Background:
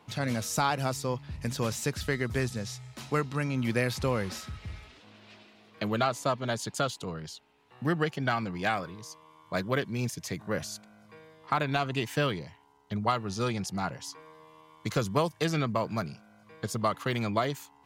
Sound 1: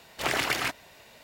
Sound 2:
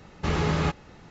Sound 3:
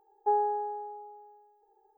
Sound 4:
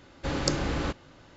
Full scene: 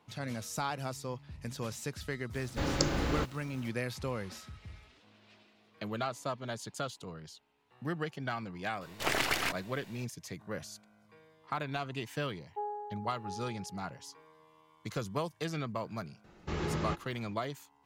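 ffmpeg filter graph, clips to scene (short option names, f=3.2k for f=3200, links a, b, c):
-filter_complex "[0:a]volume=-8dB[a];[4:a]acrusher=bits=8:mix=0:aa=0.000001[b];[1:a]aeval=exprs='if(lt(val(0),0),0.447*val(0),val(0))':c=same[c];[3:a]aecho=1:1:680:0.501[d];[2:a]equalizer=f=350:w=6.9:g=9[e];[b]atrim=end=1.36,asetpts=PTS-STARTPTS,volume=-2.5dB,afade=t=in:d=0.004:c=hsin,afade=t=out:st=1.356:d=0.004:c=hsin,adelay=2330[f];[c]atrim=end=1.23,asetpts=PTS-STARTPTS,volume=-1dB,afade=t=in:d=0.004:c=hsin,afade=t=out:st=1.226:d=0.004:c=hsin,adelay=8810[g];[d]atrim=end=1.97,asetpts=PTS-STARTPTS,volume=-11.5dB,afade=t=in:d=0.004:c=hsin,afade=t=out:st=1.966:d=0.004:c=hsin,adelay=12300[h];[e]atrim=end=1.1,asetpts=PTS-STARTPTS,volume=-10.5dB,afade=t=in:d=0.004:c=hsin,afade=t=out:st=1.096:d=0.004:c=hsin,adelay=16240[i];[a][f][g][h][i]amix=inputs=5:normalize=0"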